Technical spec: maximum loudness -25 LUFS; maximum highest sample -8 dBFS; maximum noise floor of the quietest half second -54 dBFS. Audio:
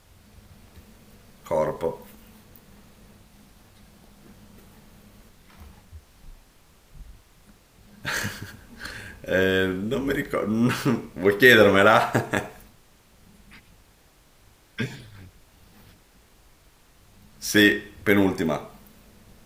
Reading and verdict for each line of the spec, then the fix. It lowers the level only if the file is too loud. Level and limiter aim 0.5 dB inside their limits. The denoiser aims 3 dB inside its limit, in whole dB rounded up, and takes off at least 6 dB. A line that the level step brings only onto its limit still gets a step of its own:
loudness -21.5 LUFS: fail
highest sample -3.5 dBFS: fail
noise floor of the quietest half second -57 dBFS: OK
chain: gain -4 dB; limiter -8.5 dBFS

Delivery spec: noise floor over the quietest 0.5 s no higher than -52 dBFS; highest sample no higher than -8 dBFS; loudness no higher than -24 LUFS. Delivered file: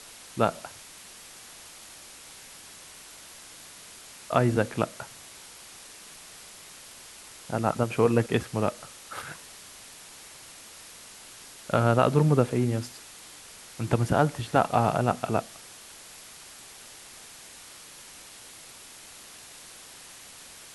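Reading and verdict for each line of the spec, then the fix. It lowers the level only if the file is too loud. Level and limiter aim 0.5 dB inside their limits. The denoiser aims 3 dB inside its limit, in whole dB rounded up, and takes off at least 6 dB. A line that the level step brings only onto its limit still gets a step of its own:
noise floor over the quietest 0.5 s -47 dBFS: fail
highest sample -6.5 dBFS: fail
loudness -26.0 LUFS: OK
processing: denoiser 8 dB, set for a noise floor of -47 dBFS; limiter -8.5 dBFS

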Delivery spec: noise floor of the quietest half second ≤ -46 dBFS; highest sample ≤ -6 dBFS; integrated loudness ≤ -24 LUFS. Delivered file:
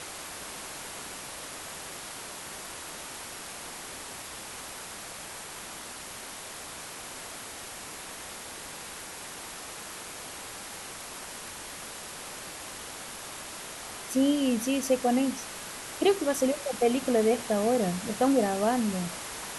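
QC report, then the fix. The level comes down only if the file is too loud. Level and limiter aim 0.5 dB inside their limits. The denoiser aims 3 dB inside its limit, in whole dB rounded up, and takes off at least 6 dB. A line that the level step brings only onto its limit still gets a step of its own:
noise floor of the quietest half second -42 dBFS: fail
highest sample -12.5 dBFS: OK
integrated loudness -32.0 LUFS: OK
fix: denoiser 7 dB, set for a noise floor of -42 dBFS

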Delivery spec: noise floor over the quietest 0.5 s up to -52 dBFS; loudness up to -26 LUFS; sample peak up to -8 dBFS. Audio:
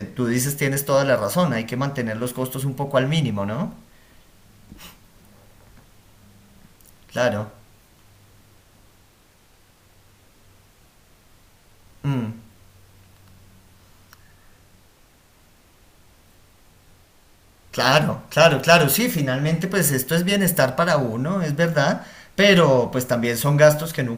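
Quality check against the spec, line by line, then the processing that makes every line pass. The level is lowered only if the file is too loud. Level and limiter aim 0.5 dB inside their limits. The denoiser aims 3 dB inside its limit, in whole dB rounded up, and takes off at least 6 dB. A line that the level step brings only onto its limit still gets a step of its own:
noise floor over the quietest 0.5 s -55 dBFS: OK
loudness -20.0 LUFS: fail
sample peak -1.5 dBFS: fail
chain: gain -6.5 dB; limiter -8.5 dBFS

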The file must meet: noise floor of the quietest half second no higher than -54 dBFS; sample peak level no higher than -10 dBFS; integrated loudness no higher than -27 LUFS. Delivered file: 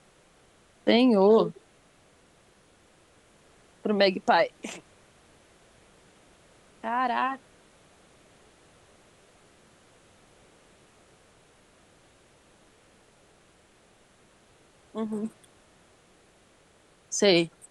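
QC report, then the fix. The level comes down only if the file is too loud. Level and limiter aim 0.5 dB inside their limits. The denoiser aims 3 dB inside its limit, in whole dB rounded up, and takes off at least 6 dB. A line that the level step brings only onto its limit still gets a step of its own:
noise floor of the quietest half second -60 dBFS: OK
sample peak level -8.0 dBFS: fail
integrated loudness -25.0 LUFS: fail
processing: gain -2.5 dB

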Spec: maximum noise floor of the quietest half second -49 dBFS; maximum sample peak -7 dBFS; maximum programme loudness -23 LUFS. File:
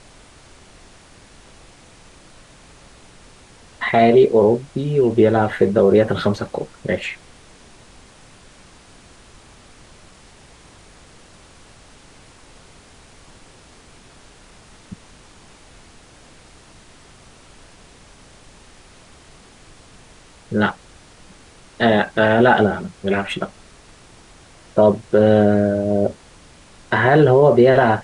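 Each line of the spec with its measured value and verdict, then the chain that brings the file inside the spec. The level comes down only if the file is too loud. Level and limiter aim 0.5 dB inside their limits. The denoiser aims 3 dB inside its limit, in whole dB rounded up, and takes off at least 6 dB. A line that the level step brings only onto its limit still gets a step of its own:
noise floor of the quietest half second -46 dBFS: fail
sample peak -4.0 dBFS: fail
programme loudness -16.5 LUFS: fail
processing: gain -7 dB

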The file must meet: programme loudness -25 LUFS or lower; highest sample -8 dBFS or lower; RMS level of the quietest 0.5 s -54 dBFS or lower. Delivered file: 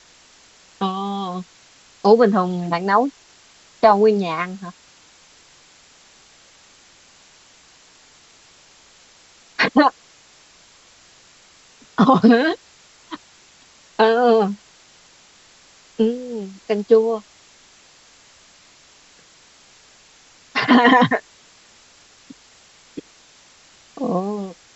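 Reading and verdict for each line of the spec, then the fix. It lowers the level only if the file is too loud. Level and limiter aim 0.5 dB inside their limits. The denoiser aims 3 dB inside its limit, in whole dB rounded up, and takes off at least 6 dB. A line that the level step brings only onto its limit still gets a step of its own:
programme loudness -18.0 LUFS: fail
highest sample -2.5 dBFS: fail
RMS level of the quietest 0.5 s -51 dBFS: fail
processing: gain -7.5 dB

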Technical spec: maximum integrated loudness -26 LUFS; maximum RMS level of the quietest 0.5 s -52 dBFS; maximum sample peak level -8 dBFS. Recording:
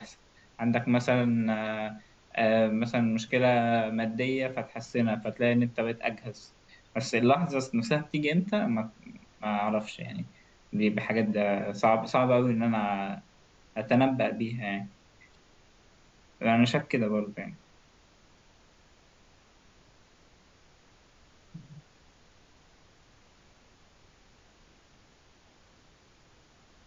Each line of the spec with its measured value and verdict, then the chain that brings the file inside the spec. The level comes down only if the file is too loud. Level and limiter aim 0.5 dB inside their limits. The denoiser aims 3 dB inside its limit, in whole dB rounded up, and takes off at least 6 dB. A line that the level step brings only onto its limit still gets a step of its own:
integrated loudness -28.0 LUFS: OK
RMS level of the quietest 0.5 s -60 dBFS: OK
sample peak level -10.0 dBFS: OK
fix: none

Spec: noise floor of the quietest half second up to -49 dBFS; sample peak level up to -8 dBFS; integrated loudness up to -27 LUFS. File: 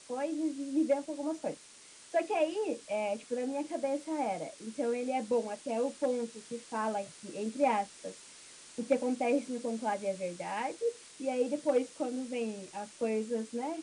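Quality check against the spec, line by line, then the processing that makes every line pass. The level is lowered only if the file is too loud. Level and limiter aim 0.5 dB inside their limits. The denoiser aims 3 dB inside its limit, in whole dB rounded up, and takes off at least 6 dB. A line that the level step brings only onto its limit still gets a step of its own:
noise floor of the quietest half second -55 dBFS: OK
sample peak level -16.0 dBFS: OK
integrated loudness -34.0 LUFS: OK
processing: none

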